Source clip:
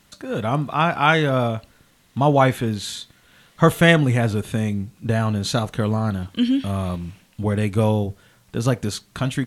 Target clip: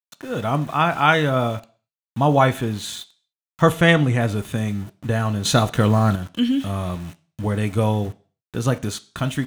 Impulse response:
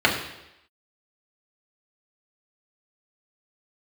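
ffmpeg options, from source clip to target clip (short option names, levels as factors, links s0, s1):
-filter_complex "[0:a]aeval=exprs='val(0)*gte(abs(val(0)),0.0141)':c=same,asettb=1/sr,asplit=3[s0][s1][s2];[s0]atrim=end=3.724[s3];[s1]atrim=start=3.72:end=4.21,asetpts=PTS-STARTPTS,afade=t=in:d=0.004:c=qsin,afade=t=out:st=0.486:d=0.004:c=qsin,highshelf=f=9600:g=-8.5[s4];[s2]atrim=start=4.206[s5];[s3][s4]acrossfade=d=0.004:c1=hsin:c2=qsin[s6];[s6][s5]acrossfade=d=0.004:c1=qsin:c2=hsin,asplit=2[s7][s8];[1:a]atrim=start_sample=2205,asetrate=88200,aresample=44100,lowshelf=f=500:g=-5[s9];[s8][s9]afir=irnorm=-1:irlink=0,volume=0.0794[s10];[s7][s10]amix=inputs=2:normalize=0,asettb=1/sr,asplit=3[s11][s12][s13];[s11]atrim=end=5.454[s14];[s12]atrim=start=5.45:end=6.16,asetpts=PTS-STARTPTS,afade=t=in:d=0.004:c=qsin,afade=t=out:st=0.706:d=0.004:c=qsin,acontrast=49[s15];[s13]atrim=start=6.156[s16];[s14][s15]acrossfade=d=0.004:c1=hsin:c2=qsin[s17];[s17][s16]acrossfade=d=0.004:c1=qsin:c2=hsin,volume=0.891"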